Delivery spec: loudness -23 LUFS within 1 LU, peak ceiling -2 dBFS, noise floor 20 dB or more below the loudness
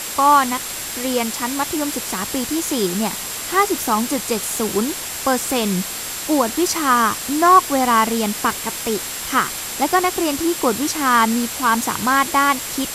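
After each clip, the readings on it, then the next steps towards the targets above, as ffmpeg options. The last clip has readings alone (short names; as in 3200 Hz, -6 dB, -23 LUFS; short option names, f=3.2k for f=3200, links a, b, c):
steady tone 7600 Hz; tone level -34 dBFS; noise floor -28 dBFS; noise floor target -39 dBFS; loudness -18.5 LUFS; peak -2.0 dBFS; loudness target -23.0 LUFS
-> -af "bandreject=f=7.6k:w=30"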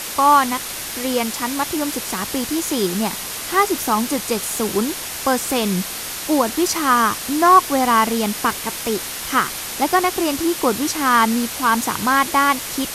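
steady tone none; noise floor -29 dBFS; noise floor target -39 dBFS
-> -af "afftdn=nr=10:nf=-29"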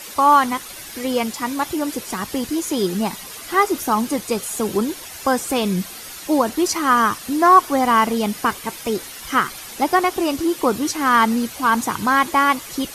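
noise floor -36 dBFS; noise floor target -40 dBFS
-> -af "afftdn=nr=6:nf=-36"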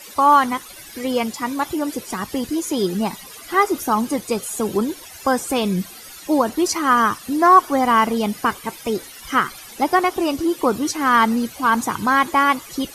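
noise floor -40 dBFS; loudness -19.5 LUFS; peak -2.5 dBFS; loudness target -23.0 LUFS
-> -af "volume=-3.5dB"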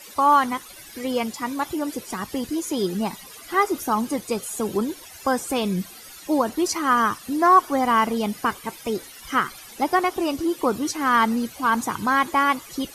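loudness -23.0 LUFS; peak -6.0 dBFS; noise floor -43 dBFS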